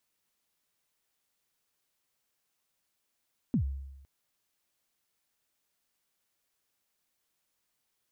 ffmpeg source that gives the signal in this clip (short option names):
-f lavfi -i "aevalsrc='0.0794*pow(10,-3*t/0.99)*sin(2*PI*(280*0.093/log(68/280)*(exp(log(68/280)*min(t,0.093)/0.093)-1)+68*max(t-0.093,0)))':d=0.51:s=44100"